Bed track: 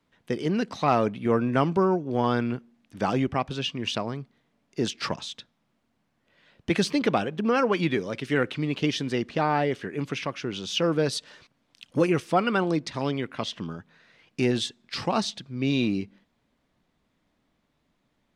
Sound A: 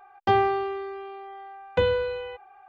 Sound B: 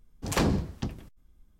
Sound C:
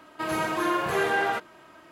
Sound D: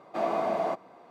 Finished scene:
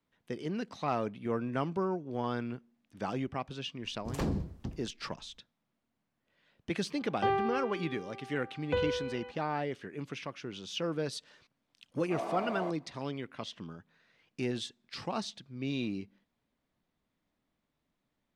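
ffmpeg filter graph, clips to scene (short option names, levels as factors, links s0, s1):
-filter_complex "[0:a]volume=0.316[s0];[2:a]tiltshelf=f=770:g=4,atrim=end=1.59,asetpts=PTS-STARTPTS,volume=0.316,afade=t=in:d=0.004:c=hsin,afade=t=out:st=1.586:d=0.004:c=hsin,adelay=3820[s1];[1:a]atrim=end=2.68,asetpts=PTS-STARTPTS,volume=0.376,afade=t=in:d=0.004:c=hsin,afade=t=out:st=2.676:d=0.004:c=hsin,adelay=6950[s2];[4:a]atrim=end=1.1,asetpts=PTS-STARTPTS,volume=0.376,afade=t=in:d=0.004:c=hsin,afade=t=out:st=1.096:d=0.004:c=hsin,adelay=11960[s3];[s0][s1][s2][s3]amix=inputs=4:normalize=0"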